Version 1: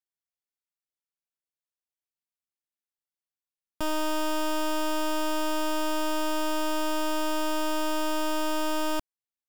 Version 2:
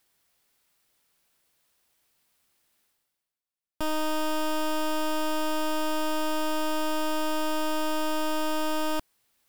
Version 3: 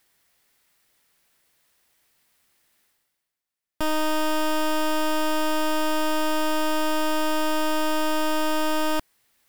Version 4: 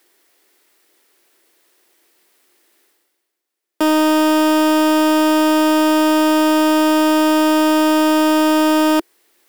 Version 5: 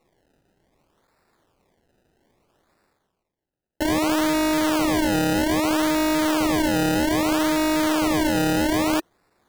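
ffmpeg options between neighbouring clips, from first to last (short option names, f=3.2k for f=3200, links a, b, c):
-af "equalizer=f=6.6k:w=3.2:g=-3,areverse,acompressor=mode=upward:threshold=-51dB:ratio=2.5,areverse"
-af "equalizer=f=1.9k:t=o:w=0.41:g=4.5,volume=4dB"
-af "highpass=f=350:t=q:w=4,aeval=exprs='clip(val(0),-1,0.0891)':c=same,volume=7dB"
-af "acrusher=samples=27:mix=1:aa=0.000001:lfo=1:lforange=27:lforate=0.62,volume=-7dB"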